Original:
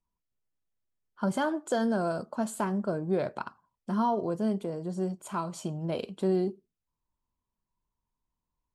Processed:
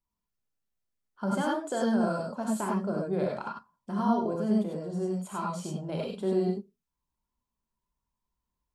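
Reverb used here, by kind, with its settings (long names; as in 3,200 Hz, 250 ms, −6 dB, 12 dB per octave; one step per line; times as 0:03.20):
reverb whose tail is shaped and stops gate 120 ms rising, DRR −2 dB
level −4 dB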